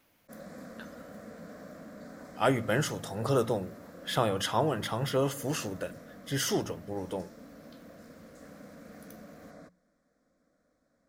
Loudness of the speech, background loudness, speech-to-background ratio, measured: −31.0 LKFS, −49.0 LKFS, 18.0 dB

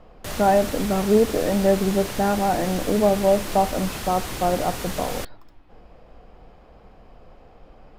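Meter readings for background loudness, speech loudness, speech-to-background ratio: −31.5 LKFS, −22.0 LKFS, 9.5 dB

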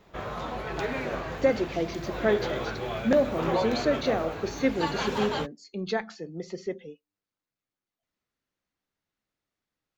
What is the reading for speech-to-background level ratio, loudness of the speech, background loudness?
4.0 dB, −29.0 LKFS, −33.0 LKFS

